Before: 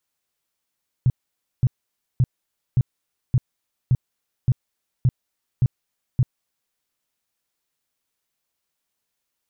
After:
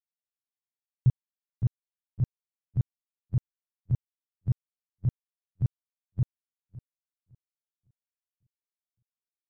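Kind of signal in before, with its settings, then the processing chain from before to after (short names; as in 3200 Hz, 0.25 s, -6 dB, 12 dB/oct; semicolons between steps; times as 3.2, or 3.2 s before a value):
tone bursts 126 Hz, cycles 5, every 0.57 s, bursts 10, -12.5 dBFS
on a send: feedback echo 0.559 s, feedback 53%, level -7 dB; on the sum: upward expander 2.5:1, over -35 dBFS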